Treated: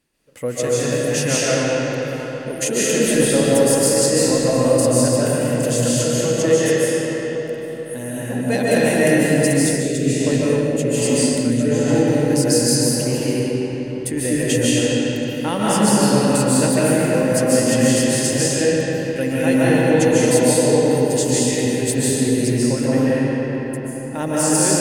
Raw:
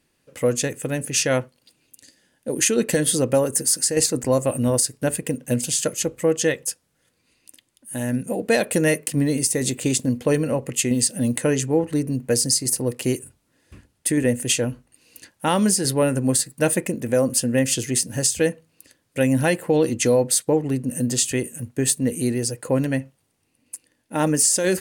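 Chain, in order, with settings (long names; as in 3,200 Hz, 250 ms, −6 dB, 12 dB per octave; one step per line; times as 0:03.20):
convolution reverb RT60 4.8 s, pre-delay 106 ms, DRR −9.5 dB
0:09.76–0:11.88: rotating-speaker cabinet horn 1.2 Hz
level −4.5 dB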